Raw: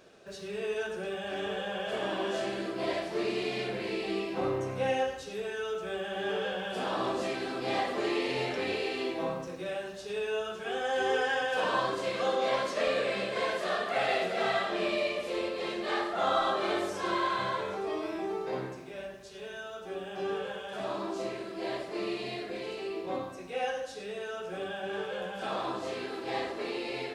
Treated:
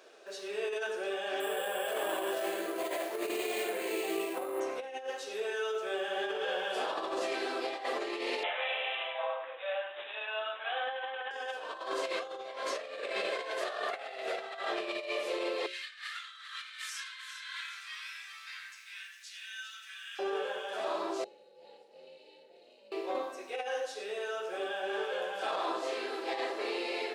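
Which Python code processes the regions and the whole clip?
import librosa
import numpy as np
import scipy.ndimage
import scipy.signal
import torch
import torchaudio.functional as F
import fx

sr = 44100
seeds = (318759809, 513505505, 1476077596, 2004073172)

y = fx.chain(x, sr, fx.air_absorb(metres=91.0),
    fx.resample_bad(factor=4, down='none', up='hold'), at=(1.4, 4.6))
y = fx.chain(y, sr, fx.steep_highpass(hz=530.0, slope=72),
    fx.high_shelf(hz=7500.0, db=8.5),
    fx.resample_bad(factor=6, down='none', up='filtered'), at=(8.43, 11.31))
y = fx.chain(y, sr, fx.cheby2_bandstop(low_hz=240.0, high_hz=700.0, order=4, stop_db=60),
    fx.over_compress(threshold_db=-44.0, ratio=-0.5),
    fx.echo_single(ms=402, db=-10.0), at=(15.66, 20.19))
y = fx.chain(y, sr, fx.tone_stack(knobs='10-0-1'),
    fx.small_body(hz=(280.0, 660.0, 2800.0, 4000.0), ring_ms=25, db=12),
    fx.ring_mod(carrier_hz=180.0), at=(21.24, 22.92))
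y = scipy.signal.sosfilt(scipy.signal.butter(4, 350.0, 'highpass', fs=sr, output='sos'), y)
y = fx.hum_notches(y, sr, base_hz=60, count=10)
y = fx.over_compress(y, sr, threshold_db=-34.0, ratio=-0.5)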